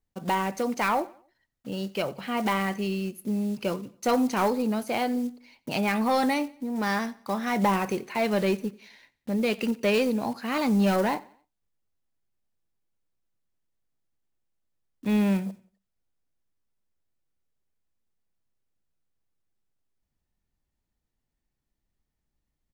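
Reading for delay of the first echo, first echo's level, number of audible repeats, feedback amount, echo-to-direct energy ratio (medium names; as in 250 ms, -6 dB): 90 ms, -22.5 dB, 2, 39%, -22.0 dB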